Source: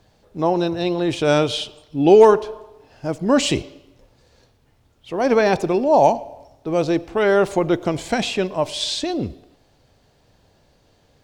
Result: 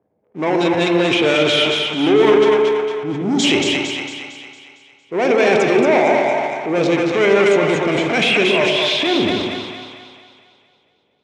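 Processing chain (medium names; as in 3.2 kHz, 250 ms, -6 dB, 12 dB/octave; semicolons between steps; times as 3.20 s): time-frequency box 2.65–3.44 s, 440–3100 Hz -26 dB; level-controlled noise filter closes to 640 Hz, open at -14 dBFS; dynamic bell 3 kHz, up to +6 dB, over -38 dBFS, Q 0.97; compression 5:1, threshold -19 dBFS, peak gain reduction 12 dB; waveshaping leveller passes 3; two-band feedback delay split 680 Hz, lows 119 ms, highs 228 ms, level -4 dB; transient shaper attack -7 dB, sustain +6 dB; cabinet simulation 190–7800 Hz, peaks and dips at 410 Hz +4 dB, 2.2 kHz +9 dB, 4.5 kHz -7 dB; spring tank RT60 1.7 s, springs 35/46 ms, chirp 80 ms, DRR 6 dB; trim -2 dB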